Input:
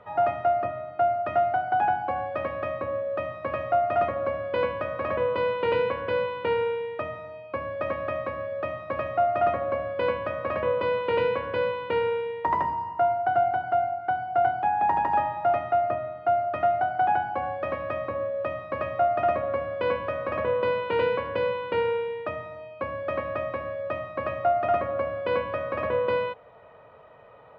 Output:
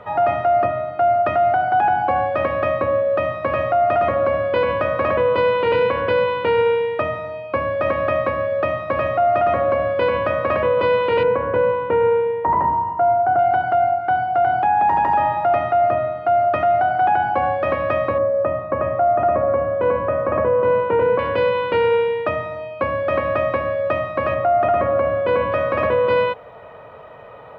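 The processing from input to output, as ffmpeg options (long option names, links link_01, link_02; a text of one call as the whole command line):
ffmpeg -i in.wav -filter_complex "[0:a]asettb=1/sr,asplit=3[link_01][link_02][link_03];[link_01]atrim=end=11.234[link_04];[link_02]atrim=start=11.23:end=13.39,asetpts=PTS-STARTPTS,afade=type=in:duration=0.004:curve=qsin,afade=type=out:start_time=2.156:duration=0.004:curve=qsin,lowpass=1400[link_05];[link_03]atrim=start=13.386[link_06];[link_04][link_05]acrossfade=duration=0.004:curve1=hsin:curve2=qsin[link_07];[link_07][link_06]acrossfade=duration=0.004:curve1=qsin:curve2=hsin,asettb=1/sr,asplit=3[link_08][link_09][link_10];[link_08]atrim=end=18.184[link_11];[link_09]atrim=start=18.18:end=21.19,asetpts=PTS-STARTPTS,afade=type=in:duration=0.004:curve=qsin,afade=type=out:start_time=3.006:duration=0.004:curve=qsin,lowpass=1300[link_12];[link_10]atrim=start=21.186[link_13];[link_11][link_12]acrossfade=duration=0.004:curve1=hsin:curve2=qsin[link_14];[link_14][link_13]acrossfade=duration=0.004:curve1=qsin:curve2=hsin,asettb=1/sr,asplit=3[link_15][link_16][link_17];[link_15]atrim=end=24.344[link_18];[link_16]atrim=start=24.34:end=25.52,asetpts=PTS-STARTPTS,afade=type=in:duration=0.004:curve=qsin,afade=type=out:start_time=1.176:duration=0.004:curve=qsin,aemphasis=mode=reproduction:type=75fm[link_19];[link_17]atrim=start=25.516[link_20];[link_18][link_19]acrossfade=duration=0.004:curve1=hsin:curve2=qsin[link_21];[link_21][link_20]acrossfade=duration=0.004:curve1=qsin:curve2=hsin,alimiter=level_in=20dB:limit=-1dB:release=50:level=0:latency=1,volume=-9dB" out.wav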